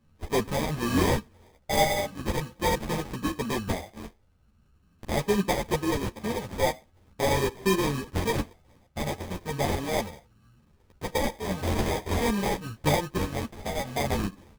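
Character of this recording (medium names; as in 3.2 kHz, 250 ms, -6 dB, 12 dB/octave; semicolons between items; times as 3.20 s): a buzz of ramps at a fixed pitch in blocks of 16 samples; phasing stages 8, 0.42 Hz, lowest notch 290–1800 Hz; aliases and images of a low sample rate 1.4 kHz, jitter 0%; a shimmering, thickened sound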